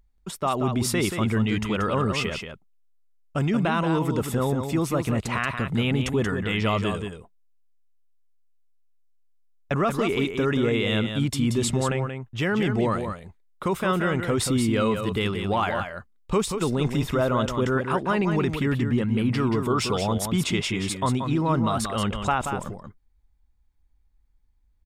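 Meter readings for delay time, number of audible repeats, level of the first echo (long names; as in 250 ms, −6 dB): 181 ms, 1, −7.0 dB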